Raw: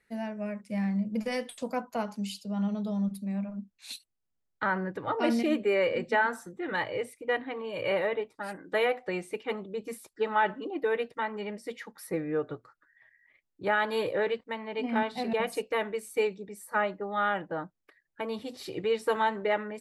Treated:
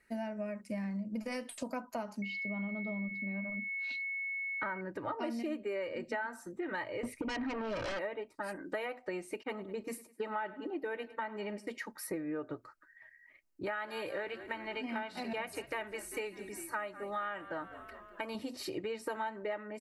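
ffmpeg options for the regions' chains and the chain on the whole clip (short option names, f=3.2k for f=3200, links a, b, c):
-filter_complex "[0:a]asettb=1/sr,asplit=3[a][b][c];[a]atrim=end=2.224[d];[b]atrim=start=2.22:end=4.81,asetpts=PTS-STARTPTS,afade=t=in:d=0.004:c=qsin,afade=t=out:st=2.586:d=0.004:c=qsin,lowpass=f=3.7k:w=0.5412,lowpass=f=3.7k:w=1.3066,aeval=exprs='val(0)+0.0141*sin(2*PI*2200*n/s)':c=same[e];[c]atrim=start=4.806[f];[d][e]acrossfade=d=0.004:c1=hsin:c2=qsin[g];[g][f]acrossfade=d=0.004:c1=qsin:c2=hsin,asettb=1/sr,asplit=3[h][i][j];[h]atrim=end=7.034[k];[i]atrim=start=7.03:end=7.99,asetpts=PTS-STARTPTS,afade=t=in:d=0.004:c=qsin,afade=t=out:st=0.956:d=0.004:c=qsin,bass=f=250:g=9,treble=f=4k:g=-10,acompressor=threshold=-34dB:ratio=2.5:attack=3.2:release=140:knee=1:detection=peak,aeval=exprs='0.0562*sin(PI/2*3.16*val(0)/0.0562)':c=same[l];[j]atrim=start=7.986[m];[k][l]acrossfade=d=0.004:c1=hsin:c2=qsin[n];[n][m]acrossfade=d=0.004:c1=qsin:c2=hsin,asettb=1/sr,asplit=3[o][p][q];[o]atrim=end=9.434[r];[p]atrim=start=9.43:end=11.78,asetpts=PTS-STARTPTS,afade=t=in:d=0.004:c=qsin,afade=t=out:st=2.346:d=0.004:c=qsin,agate=range=-33dB:threshold=-43dB:ratio=3:release=100:detection=peak,aecho=1:1:102|204|306:0.1|0.04|0.016,atrim=end_sample=103635[s];[q]atrim=start=11.776[t];[r][s]acrossfade=d=0.004:c1=hsin:c2=qsin[u];[u][t]acrossfade=d=0.004:c1=qsin:c2=hsin,asettb=1/sr,asplit=3[v][w][x];[v]atrim=end=13.664[y];[w]atrim=start=13.66:end=18.35,asetpts=PTS-STARTPTS,afade=t=in:d=0.004:c=qsin,afade=t=out:st=4.686:d=0.004:c=qsin,tiltshelf=f=1.3k:g=-5.5,acrossover=split=2800[z][aa];[aa]acompressor=threshold=-45dB:ratio=4:attack=1:release=60[ab];[z][ab]amix=inputs=2:normalize=0,asplit=7[ac][ad][ae][af][ag][ah][ai];[ad]adelay=197,afreqshift=-45,volume=-19dB[aj];[ae]adelay=394,afreqshift=-90,volume=-22.9dB[ak];[af]adelay=591,afreqshift=-135,volume=-26.8dB[al];[ag]adelay=788,afreqshift=-180,volume=-30.6dB[am];[ah]adelay=985,afreqshift=-225,volume=-34.5dB[an];[ai]adelay=1182,afreqshift=-270,volume=-38.4dB[ao];[ac][aj][ak][al][am][an][ao]amix=inputs=7:normalize=0,atrim=end_sample=206829[ap];[x]atrim=start=18.346[aq];[y][ap]acrossfade=d=0.004:c1=hsin:c2=qsin[ar];[ar][aq]acrossfade=d=0.004:c1=qsin:c2=hsin,aecho=1:1:3.2:0.4,acompressor=threshold=-38dB:ratio=5,equalizer=f=3.5k:w=6.7:g=-10.5,volume=2dB"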